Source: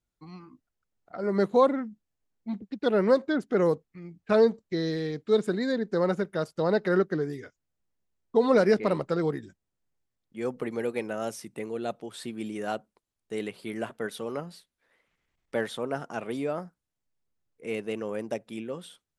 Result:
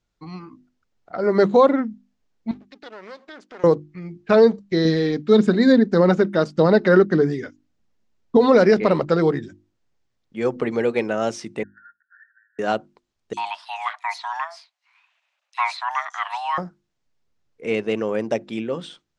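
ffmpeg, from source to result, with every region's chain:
-filter_complex "[0:a]asettb=1/sr,asplit=3[a][b][c];[a]atrim=end=2.514[d];[b]atrim=start=2.51:end=3.64,asetpts=PTS-STARTPTS,afade=t=in:d=0.004:c=qsin,afade=t=out:st=1.126:d=0.004:c=qsin,aeval=exprs='if(lt(val(0),0),0.251*val(0),val(0))':c=same,highpass=f=1.4k:p=1,acompressor=threshold=-49dB:ratio=3:attack=3.2:release=140:knee=1:detection=peak[e];[c]atrim=start=3.636[f];[d][e]acrossfade=d=0.004:c1=hsin:c2=qsin[g];[g][f]acrossfade=d=0.004:c1=qsin:c2=hsin,asettb=1/sr,asplit=3[h][i][j];[h]atrim=end=4.854[k];[i]atrim=start=4.85:end=8.37,asetpts=PTS-STARTPTS,afade=t=in:d=0.004:c=qsin,afade=t=out:st=3.516:d=0.004:c=qsin,equalizer=f=230:w=2.8:g=7.5,aphaser=in_gain=1:out_gain=1:delay=4:decay=0.27:speed=1.7:type=triangular[l];[j]atrim=start=8.366[m];[k][l]acrossfade=d=0.004:c1=hsin:c2=qsin[n];[n][m]acrossfade=d=0.004:c1=qsin:c2=hsin,asettb=1/sr,asplit=3[o][p][q];[o]atrim=end=11.634[r];[p]atrim=start=11.63:end=12.59,asetpts=PTS-STARTPTS,afade=t=in:d=0.004:c=qsin,afade=t=out:st=0.956:d=0.004:c=qsin,asuperpass=centerf=1600:order=20:qfactor=3.5,acompressor=threshold=-57dB:ratio=2.5:attack=3.2:release=140:knee=1:detection=peak[s];[q]atrim=start=12.586[t];[r][s]acrossfade=d=0.004:c1=hsin:c2=qsin[u];[u][t]acrossfade=d=0.004:c1=qsin:c2=hsin,asettb=1/sr,asplit=3[v][w][x];[v]atrim=end=13.334[y];[w]atrim=start=13.33:end=16.58,asetpts=PTS-STARTPTS,afade=t=in:d=0.004:c=qsin,afade=t=out:st=3.246:d=0.004:c=qsin,highpass=f=530:p=1,afreqshift=500,acrossover=split=4400[z][aa];[z]adelay=40[ab];[ab][aa]amix=inputs=2:normalize=0,atrim=end_sample=143325[ac];[x]atrim=start=16.576[ad];[y][ac]acrossfade=d=0.004:c1=hsin:c2=qsin[ae];[ae][ad]acrossfade=d=0.004:c1=qsin:c2=hsin,lowpass=f=6.6k:w=0.5412,lowpass=f=6.6k:w=1.3066,bandreject=f=50:t=h:w=6,bandreject=f=100:t=h:w=6,bandreject=f=150:t=h:w=6,bandreject=f=200:t=h:w=6,bandreject=f=250:t=h:w=6,bandreject=f=300:t=h:w=6,bandreject=f=350:t=h:w=6,alimiter=level_in=13.5dB:limit=-1dB:release=50:level=0:latency=1,volume=-4dB"

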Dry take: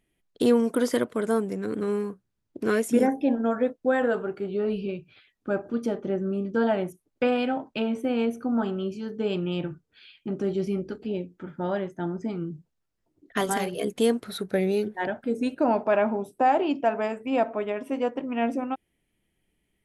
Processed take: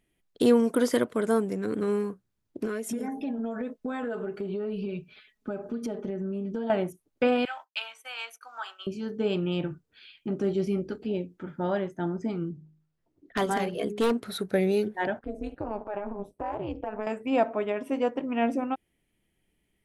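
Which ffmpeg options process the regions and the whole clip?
-filter_complex "[0:a]asettb=1/sr,asplit=3[a][b][c];[a]atrim=end=2.654[d];[b]atrim=start=2.65:end=6.7,asetpts=PTS-STARTPTS,afade=t=in:d=0.004:c=qsin,afade=t=out:st=4.046:d=0.004:c=qsin,aecho=1:1:4.7:0.83,atrim=end_sample=178605,acompressor=threshold=-28dB:ratio=12:attack=3.2:release=140:knee=1:detection=peak[e];[c]atrim=start=6.696[f];[d][e]acrossfade=d=0.004:c1=hsin:c2=qsin[g];[g][f]acrossfade=d=0.004:c1=qsin:c2=hsin,asettb=1/sr,asplit=3[h][i][j];[h]atrim=end=7.454[k];[i]atrim=start=7.45:end=8.87,asetpts=PTS-STARTPTS,afade=t=in:d=0.004:c=qsin,afade=t=out:st=1.416:d=0.004:c=qsin,highpass=f=990:w=0.5412,highpass=f=990:w=1.3066,agate=range=-33dB:threshold=-48dB:ratio=3:release=100:detection=peak,highshelf=f=3.1k:g=7.5[l];[j]atrim=start=8.866[m];[k][l]acrossfade=d=0.004:c1=hsin:c2=qsin[n];[n][m]acrossfade=d=0.004:c1=qsin:c2=hsin,asettb=1/sr,asplit=3[o][p][q];[o]atrim=end=12.514[r];[p]atrim=start=12.51:end=14.23,asetpts=PTS-STARTPTS,afade=t=in:d=0.004:c=qsin,afade=t=out:st=1.716:d=0.004:c=qsin,lowpass=f=3.3k:p=1,bandreject=f=51.88:t=h:w=4,bandreject=f=103.76:t=h:w=4,bandreject=f=155.64:t=h:w=4,bandreject=f=207.52:t=h:w=4,bandreject=f=259.4:t=h:w=4,bandreject=f=311.28:t=h:w=4,bandreject=f=363.16:t=h:w=4,bandreject=f=415.04:t=h:w=4,aeval=exprs='0.133*(abs(mod(val(0)/0.133+3,4)-2)-1)':c=same[s];[q]atrim=start=14.226[t];[r][s]acrossfade=d=0.004:c1=hsin:c2=qsin[u];[u][t]acrossfade=d=0.004:c1=qsin:c2=hsin,asettb=1/sr,asplit=3[v][w][x];[v]atrim=end=15.194[y];[w]atrim=start=15.19:end=17.07,asetpts=PTS-STARTPTS,afade=t=in:d=0.004:c=qsin,afade=t=out:st=1.876:d=0.004:c=qsin,highshelf=f=3.1k:g=-11.5,acompressor=threshold=-26dB:ratio=4:attack=3.2:release=140:knee=1:detection=peak,tremolo=f=210:d=1[z];[x]atrim=start=17.066[aa];[y][z]acrossfade=d=0.004:c1=hsin:c2=qsin[ab];[ab][aa]acrossfade=d=0.004:c1=qsin:c2=hsin"

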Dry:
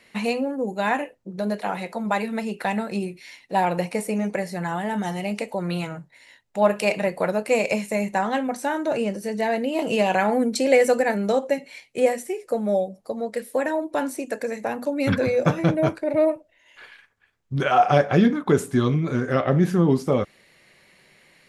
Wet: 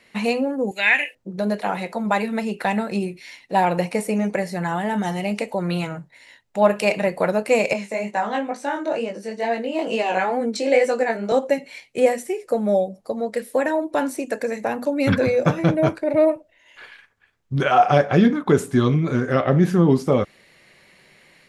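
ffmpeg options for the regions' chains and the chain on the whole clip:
-filter_complex "[0:a]asettb=1/sr,asplit=3[a][b][c];[a]atrim=end=0.714[d];[b]atrim=start=0.71:end=1.15,asetpts=PTS-STARTPTS,afade=t=in:d=0.004:c=qsin,afade=t=out:st=0.436:d=0.004:c=qsin,highpass=f=1k:p=1,acrossover=split=3000[e][f];[f]acompressor=threshold=-55dB:ratio=4:attack=1:release=60[g];[e][g]amix=inputs=2:normalize=0,highshelf=f=1.6k:t=q:w=3:g=11.5[h];[c]atrim=start=1.146[i];[d][h]acrossfade=d=0.004:c1=hsin:c2=qsin[j];[j][i]acrossfade=d=0.004:c1=qsin:c2=hsin,asettb=1/sr,asplit=3[k][l][m];[k]atrim=end=7.734[n];[l]atrim=start=7.73:end=11.32,asetpts=PTS-STARTPTS,afade=t=in:d=0.004:c=qsin,afade=t=out:st=3.586:d=0.004:c=qsin,flanger=delay=17:depth=5.1:speed=2.2,highpass=240,lowpass=7.7k[o];[m]atrim=start=11.316[p];[n][o]acrossfade=d=0.004:c1=hsin:c2=qsin[q];[q][p]acrossfade=d=0.004:c1=qsin:c2=hsin,highshelf=f=9.5k:g=-4,dynaudnorm=f=110:g=3:m=3dB"

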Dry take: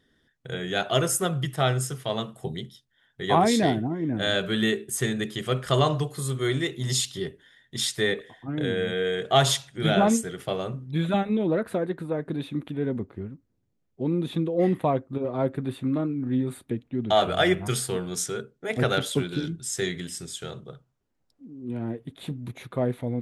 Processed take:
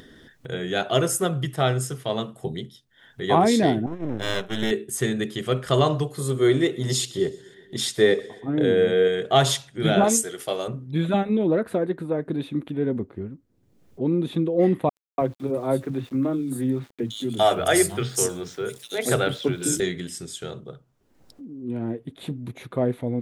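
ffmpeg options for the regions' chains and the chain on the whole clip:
-filter_complex "[0:a]asettb=1/sr,asplit=3[a][b][c];[a]atrim=end=3.864[d];[b]atrim=start=3.86:end=4.71,asetpts=PTS-STARTPTS,afade=t=in:d=0.004:c=qsin,afade=t=out:st=0.846:d=0.004:c=qsin,agate=range=-33dB:threshold=-27dB:ratio=3:release=100:detection=peak,aeval=exprs='max(val(0),0)':c=same,asuperstop=centerf=4600:order=8:qfactor=5.9[e];[c]atrim=start=4.706[f];[d][e]acrossfade=d=0.004:c1=hsin:c2=qsin[g];[g][f]acrossfade=d=0.004:c1=qsin:c2=hsin,asettb=1/sr,asplit=3[h][i][j];[h]atrim=end=6.204[k];[i]atrim=start=6.2:end=9.08,asetpts=PTS-STARTPTS,afade=t=in:d=0.004:c=qsin,afade=t=out:st=2.876:d=0.004:c=qsin,equalizer=f=480:t=o:w=1.8:g=5.5,aecho=1:1:123|246|369|492:0.075|0.0442|0.0261|0.0154,atrim=end_sample=127008[l];[j]atrim=start=9.076[m];[k][l]acrossfade=d=0.004:c1=hsin:c2=qsin[n];[n][m]acrossfade=d=0.004:c1=qsin:c2=hsin,asettb=1/sr,asplit=3[o][p][q];[o]atrim=end=10.044[r];[p]atrim=start=10.04:end=10.68,asetpts=PTS-STARTPTS,afade=t=in:d=0.004:c=qsin,afade=t=out:st=0.636:d=0.004:c=qsin,bass=f=250:g=-12,treble=f=4k:g=10,asplit=2[s][t];[t]adelay=14,volume=-14dB[u];[s][u]amix=inputs=2:normalize=0,atrim=end_sample=28224[v];[q]atrim=start=10.676[w];[r][v]acrossfade=d=0.004:c1=hsin:c2=qsin[x];[x][w]acrossfade=d=0.004:c1=qsin:c2=hsin,asettb=1/sr,asplit=3[y][z][aa];[y]atrim=end=14.894[ab];[z]atrim=start=14.89:end=19.8,asetpts=PTS-STARTPTS,afade=t=in:d=0.004:c=qsin,afade=t=out:st=4.906:d=0.004:c=qsin,highshelf=f=6.2k:g=10,acrossover=split=200|3800[ac][ad][ae];[ad]adelay=290[af];[ac]adelay=320[ag];[ag][af][ae]amix=inputs=3:normalize=0,atrim=end_sample=216531,aeval=exprs='val(0)*gte(abs(val(0)),0.00398)':c=same[ah];[aa]atrim=start=19.796[ai];[ab][ah]acrossfade=d=0.004:c1=hsin:c2=qsin[aj];[aj][ai]acrossfade=d=0.004:c1=qsin:c2=hsin,equalizer=f=360:t=o:w=1.8:g=4,acompressor=mode=upward:threshold=-35dB:ratio=2.5"

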